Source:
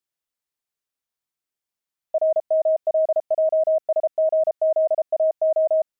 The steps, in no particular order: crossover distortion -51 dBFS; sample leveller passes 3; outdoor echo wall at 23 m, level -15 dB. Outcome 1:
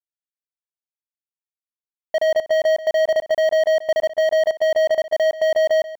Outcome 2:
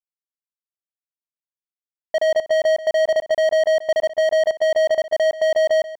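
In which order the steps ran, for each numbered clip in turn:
crossover distortion > sample leveller > outdoor echo; sample leveller > crossover distortion > outdoor echo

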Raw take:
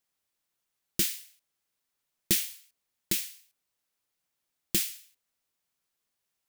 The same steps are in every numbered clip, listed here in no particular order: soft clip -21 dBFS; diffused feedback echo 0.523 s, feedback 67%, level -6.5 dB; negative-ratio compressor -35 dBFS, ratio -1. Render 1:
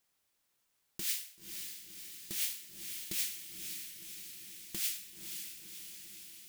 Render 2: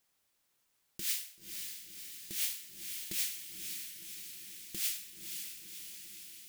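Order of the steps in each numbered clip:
soft clip > negative-ratio compressor > diffused feedback echo; negative-ratio compressor > diffused feedback echo > soft clip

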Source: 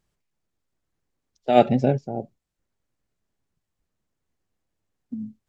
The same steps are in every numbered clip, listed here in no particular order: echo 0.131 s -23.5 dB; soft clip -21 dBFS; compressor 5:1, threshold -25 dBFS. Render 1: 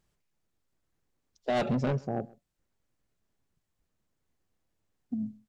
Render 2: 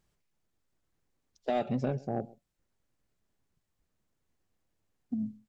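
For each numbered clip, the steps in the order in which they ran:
soft clip > compressor > echo; compressor > echo > soft clip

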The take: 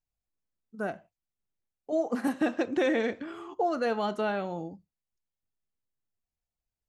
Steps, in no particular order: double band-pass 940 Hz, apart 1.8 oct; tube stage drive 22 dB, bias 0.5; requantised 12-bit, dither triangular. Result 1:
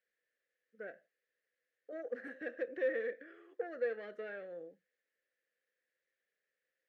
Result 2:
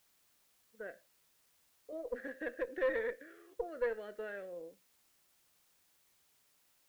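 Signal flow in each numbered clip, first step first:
tube stage > requantised > double band-pass; double band-pass > tube stage > requantised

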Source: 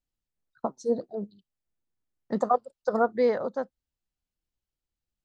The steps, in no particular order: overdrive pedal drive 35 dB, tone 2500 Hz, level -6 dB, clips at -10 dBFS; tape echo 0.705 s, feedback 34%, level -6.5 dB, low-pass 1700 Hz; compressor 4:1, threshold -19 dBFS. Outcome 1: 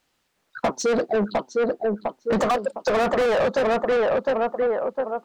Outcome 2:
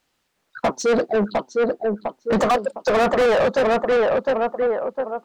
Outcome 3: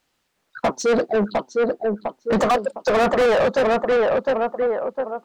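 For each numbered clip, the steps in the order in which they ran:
tape echo > overdrive pedal > compressor; tape echo > compressor > overdrive pedal; compressor > tape echo > overdrive pedal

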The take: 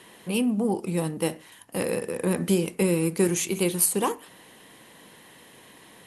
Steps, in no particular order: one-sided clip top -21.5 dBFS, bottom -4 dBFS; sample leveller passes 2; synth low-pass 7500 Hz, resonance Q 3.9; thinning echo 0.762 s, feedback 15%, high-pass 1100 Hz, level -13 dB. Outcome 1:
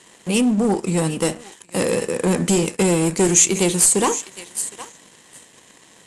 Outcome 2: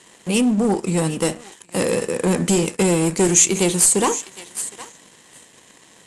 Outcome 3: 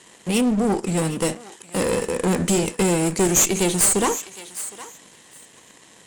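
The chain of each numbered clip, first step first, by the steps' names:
thinning echo > one-sided clip > sample leveller > synth low-pass; one-sided clip > thinning echo > sample leveller > synth low-pass; sample leveller > synth low-pass > one-sided clip > thinning echo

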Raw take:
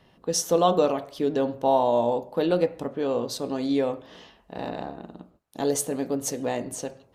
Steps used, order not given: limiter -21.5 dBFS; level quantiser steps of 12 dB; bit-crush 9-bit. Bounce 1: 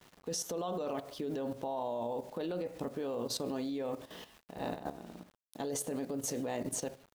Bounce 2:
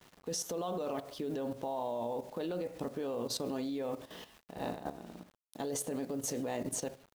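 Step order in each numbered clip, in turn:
bit-crush > limiter > level quantiser; limiter > bit-crush > level quantiser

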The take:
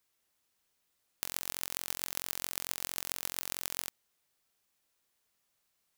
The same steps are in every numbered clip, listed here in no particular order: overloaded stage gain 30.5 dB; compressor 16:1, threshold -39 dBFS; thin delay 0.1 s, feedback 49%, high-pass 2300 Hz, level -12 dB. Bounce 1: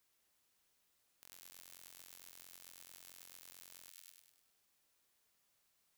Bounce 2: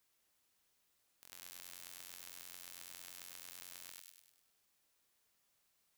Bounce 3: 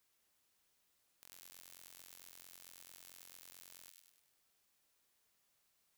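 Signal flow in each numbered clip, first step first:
thin delay > compressor > overloaded stage; thin delay > overloaded stage > compressor; compressor > thin delay > overloaded stage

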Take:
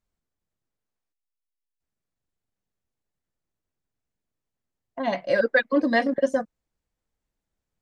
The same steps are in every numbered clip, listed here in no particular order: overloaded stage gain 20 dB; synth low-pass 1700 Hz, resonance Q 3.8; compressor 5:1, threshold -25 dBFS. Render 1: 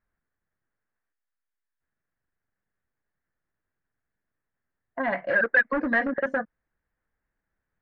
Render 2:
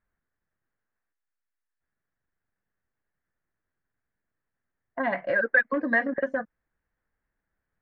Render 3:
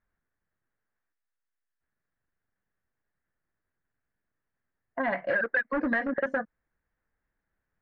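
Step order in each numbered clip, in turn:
overloaded stage > compressor > synth low-pass; compressor > overloaded stage > synth low-pass; overloaded stage > synth low-pass > compressor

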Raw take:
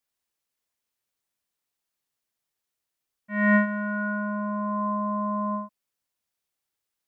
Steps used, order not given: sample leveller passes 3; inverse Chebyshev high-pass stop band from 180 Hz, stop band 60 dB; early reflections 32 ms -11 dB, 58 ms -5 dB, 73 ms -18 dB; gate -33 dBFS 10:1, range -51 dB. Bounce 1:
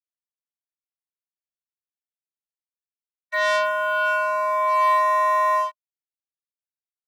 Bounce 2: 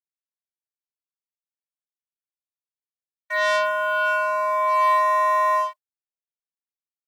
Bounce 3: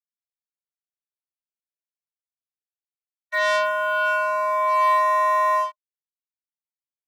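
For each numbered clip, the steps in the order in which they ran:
early reflections > gate > sample leveller > inverse Chebyshev high-pass; early reflections > sample leveller > gate > inverse Chebyshev high-pass; gate > early reflections > sample leveller > inverse Chebyshev high-pass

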